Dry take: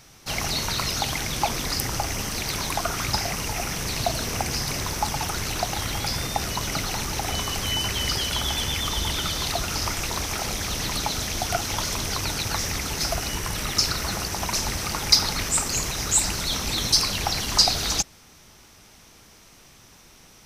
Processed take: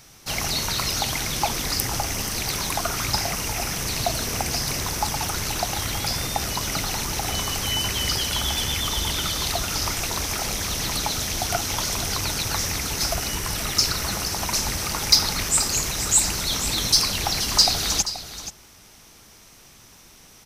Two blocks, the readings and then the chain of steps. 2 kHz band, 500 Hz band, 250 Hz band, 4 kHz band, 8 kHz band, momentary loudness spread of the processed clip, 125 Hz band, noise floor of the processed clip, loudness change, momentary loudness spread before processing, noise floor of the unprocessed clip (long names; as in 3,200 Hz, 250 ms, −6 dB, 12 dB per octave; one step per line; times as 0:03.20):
+0.5 dB, 0.0 dB, 0.0 dB, +1.5 dB, +2.5 dB, 7 LU, 0.0 dB, −50 dBFS, +1.5 dB, 7 LU, −51 dBFS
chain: high-shelf EQ 6,400 Hz +5 dB
soft clipping −2 dBFS, distortion −29 dB
single-tap delay 479 ms −12.5 dB